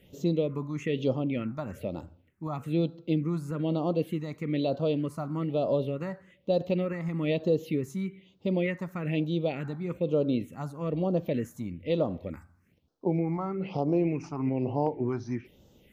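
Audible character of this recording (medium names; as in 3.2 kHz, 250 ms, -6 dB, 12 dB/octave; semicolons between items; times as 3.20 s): phasing stages 4, 1.1 Hz, lowest notch 470–2100 Hz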